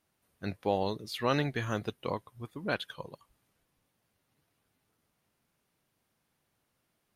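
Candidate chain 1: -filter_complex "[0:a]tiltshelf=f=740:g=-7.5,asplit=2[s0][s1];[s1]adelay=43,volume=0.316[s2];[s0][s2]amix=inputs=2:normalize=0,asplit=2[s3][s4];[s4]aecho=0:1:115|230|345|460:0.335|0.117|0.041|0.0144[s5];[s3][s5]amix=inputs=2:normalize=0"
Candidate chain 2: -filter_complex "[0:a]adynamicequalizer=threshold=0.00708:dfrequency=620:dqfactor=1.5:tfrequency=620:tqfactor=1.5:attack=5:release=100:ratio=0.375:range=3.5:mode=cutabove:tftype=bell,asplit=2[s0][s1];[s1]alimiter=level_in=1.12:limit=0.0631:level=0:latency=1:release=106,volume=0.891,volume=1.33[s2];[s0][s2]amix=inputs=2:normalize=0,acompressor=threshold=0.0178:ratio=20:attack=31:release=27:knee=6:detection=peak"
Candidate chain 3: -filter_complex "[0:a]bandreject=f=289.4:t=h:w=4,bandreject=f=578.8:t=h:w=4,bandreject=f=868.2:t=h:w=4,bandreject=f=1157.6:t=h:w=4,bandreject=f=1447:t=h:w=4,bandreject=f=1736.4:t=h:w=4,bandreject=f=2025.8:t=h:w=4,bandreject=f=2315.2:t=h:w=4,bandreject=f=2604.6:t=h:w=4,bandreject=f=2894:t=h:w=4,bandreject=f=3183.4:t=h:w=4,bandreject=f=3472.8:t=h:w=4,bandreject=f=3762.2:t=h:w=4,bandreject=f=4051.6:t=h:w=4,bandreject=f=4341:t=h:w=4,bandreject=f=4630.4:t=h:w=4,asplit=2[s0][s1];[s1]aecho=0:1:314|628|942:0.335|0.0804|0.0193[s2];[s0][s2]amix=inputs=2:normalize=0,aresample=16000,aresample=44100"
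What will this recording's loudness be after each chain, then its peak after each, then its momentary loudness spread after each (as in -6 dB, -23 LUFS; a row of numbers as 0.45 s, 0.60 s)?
-32.5 LUFS, -35.5 LUFS, -34.0 LUFS; -10.5 dBFS, -18.5 dBFS, -15.5 dBFS; 14 LU, 8 LU, 13 LU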